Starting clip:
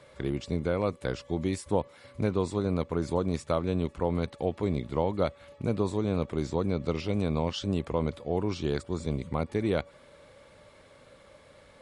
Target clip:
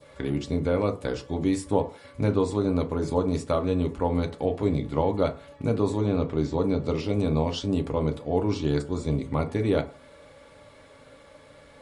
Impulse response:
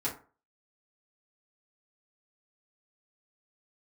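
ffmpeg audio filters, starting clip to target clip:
-filter_complex "[0:a]asettb=1/sr,asplit=3[s0][s1][s2];[s0]atrim=end=6.064[s3];[s1]atrim=start=6.06:end=6.54,asetpts=PTS-STARTPTS,afade=t=in:d=0.004:c=qsin,afade=t=out:st=0.476:d=0.004:c=qsin,lowpass=5600[s4];[s2]atrim=start=6.536[s5];[s3][s4]acrossfade=d=0.004:c1=hsin:c2=qsin[s6];[s6][s5]acrossfade=d=0.004:c1=qsin:c2=hsin,asplit=2[s7][s8];[1:a]atrim=start_sample=2205[s9];[s8][s9]afir=irnorm=-1:irlink=0,volume=0.473[s10];[s7][s10]amix=inputs=2:normalize=0,adynamicequalizer=threshold=0.00708:dfrequency=1800:dqfactor=0.94:tfrequency=1800:tqfactor=0.94:attack=5:release=100:ratio=0.375:range=2:mode=cutabove:tftype=bell"

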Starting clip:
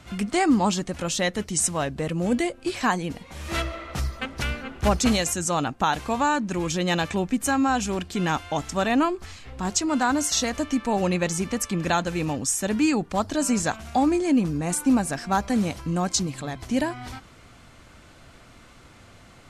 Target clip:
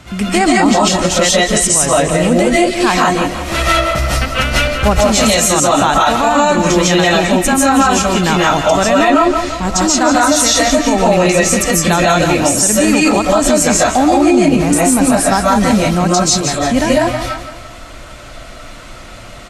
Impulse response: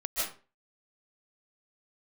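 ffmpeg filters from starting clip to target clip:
-filter_complex "[0:a]aecho=1:1:169|338|507|676|845:0.251|0.113|0.0509|0.0229|0.0103[s0];[1:a]atrim=start_sample=2205,afade=t=out:st=0.24:d=0.01,atrim=end_sample=11025[s1];[s0][s1]afir=irnorm=-1:irlink=0,alimiter=level_in=3.98:limit=0.891:release=50:level=0:latency=1,volume=0.891"

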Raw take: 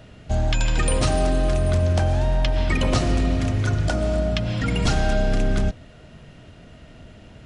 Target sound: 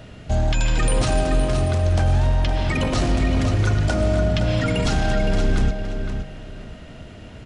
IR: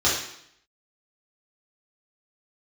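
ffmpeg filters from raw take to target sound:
-filter_complex "[0:a]alimiter=limit=0.133:level=0:latency=1:release=13,asplit=2[s0][s1];[s1]adelay=516,lowpass=f=4900:p=1,volume=0.447,asplit=2[s2][s3];[s3]adelay=516,lowpass=f=4900:p=1,volume=0.25,asplit=2[s4][s5];[s5]adelay=516,lowpass=f=4900:p=1,volume=0.25[s6];[s0][s2][s4][s6]amix=inputs=4:normalize=0,volume=1.68"

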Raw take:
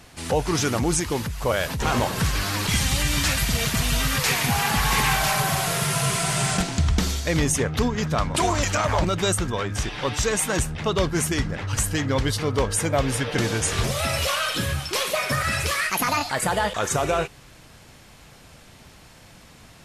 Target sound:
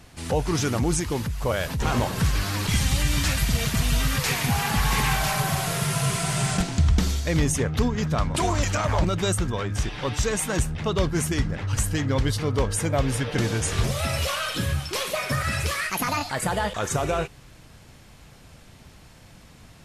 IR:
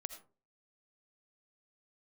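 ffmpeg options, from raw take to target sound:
-af "lowshelf=f=240:g=6,volume=0.668"

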